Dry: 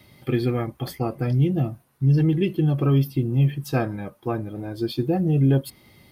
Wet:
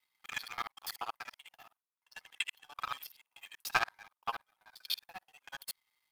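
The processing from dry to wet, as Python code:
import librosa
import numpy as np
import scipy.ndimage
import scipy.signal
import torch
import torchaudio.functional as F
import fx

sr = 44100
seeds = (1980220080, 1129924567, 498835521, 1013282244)

y = fx.local_reverse(x, sr, ms=48.0)
y = scipy.signal.sosfilt(scipy.signal.ellip(4, 1.0, 60, 890.0, 'highpass', fs=sr, output='sos'), y)
y = fx.power_curve(y, sr, exponent=2.0)
y = y * 10.0 ** (11.0 / 20.0)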